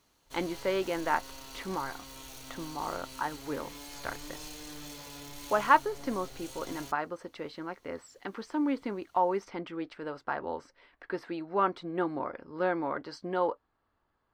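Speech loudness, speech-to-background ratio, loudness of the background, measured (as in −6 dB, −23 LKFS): −33.5 LKFS, 11.5 dB, −45.0 LKFS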